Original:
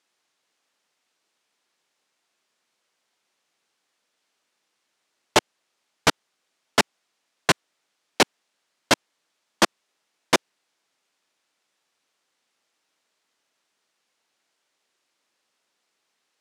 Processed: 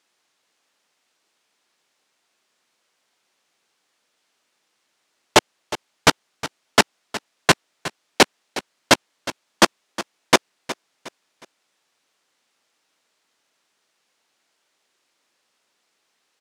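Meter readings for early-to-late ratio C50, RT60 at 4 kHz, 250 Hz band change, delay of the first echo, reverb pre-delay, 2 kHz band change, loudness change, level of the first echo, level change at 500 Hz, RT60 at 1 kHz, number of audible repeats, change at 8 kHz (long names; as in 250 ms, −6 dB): no reverb audible, no reverb audible, +4.5 dB, 363 ms, no reverb audible, +4.5 dB, +2.5 dB, −15.0 dB, +4.5 dB, no reverb audible, 3, +4.5 dB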